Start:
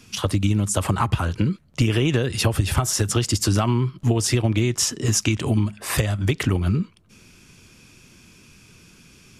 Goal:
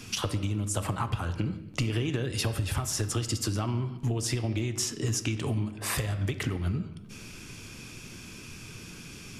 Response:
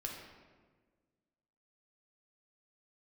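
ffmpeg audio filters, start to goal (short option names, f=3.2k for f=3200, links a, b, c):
-filter_complex "[0:a]acompressor=threshold=-36dB:ratio=4,asplit=2[a][b];[1:a]atrim=start_sample=2205,afade=t=out:st=0.41:d=0.01,atrim=end_sample=18522[c];[b][c]afir=irnorm=-1:irlink=0,volume=-3dB[d];[a][d]amix=inputs=2:normalize=0,volume=2dB"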